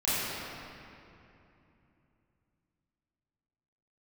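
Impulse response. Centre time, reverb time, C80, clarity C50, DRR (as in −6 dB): 200 ms, 2.9 s, −3.0 dB, −5.5 dB, −13.0 dB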